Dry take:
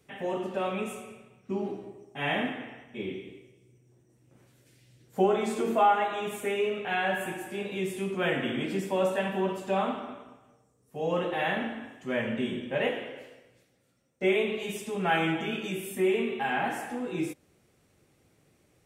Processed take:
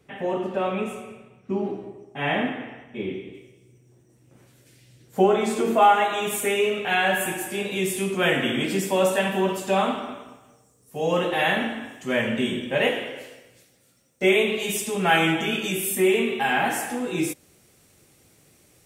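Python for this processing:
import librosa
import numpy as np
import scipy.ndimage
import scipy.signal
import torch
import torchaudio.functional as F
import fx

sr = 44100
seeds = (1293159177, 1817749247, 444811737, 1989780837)

y = fx.high_shelf(x, sr, hz=3900.0, db=fx.steps((0.0, -7.5), (3.33, 2.5), (5.81, 11.5)))
y = y * librosa.db_to_amplitude(5.5)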